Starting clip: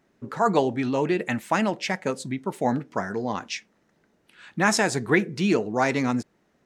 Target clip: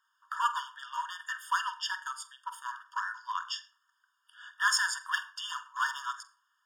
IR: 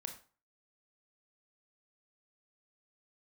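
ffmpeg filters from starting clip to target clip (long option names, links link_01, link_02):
-filter_complex "[0:a]asoftclip=type=hard:threshold=-17dB,asplit=2[link_01][link_02];[1:a]atrim=start_sample=2205,highshelf=frequency=2200:gain=-7.5,adelay=46[link_03];[link_02][link_03]afir=irnorm=-1:irlink=0,volume=-5.5dB[link_04];[link_01][link_04]amix=inputs=2:normalize=0,afftfilt=real='re*eq(mod(floor(b*sr/1024/920),2),1)':imag='im*eq(mod(floor(b*sr/1024/920),2),1)':win_size=1024:overlap=0.75"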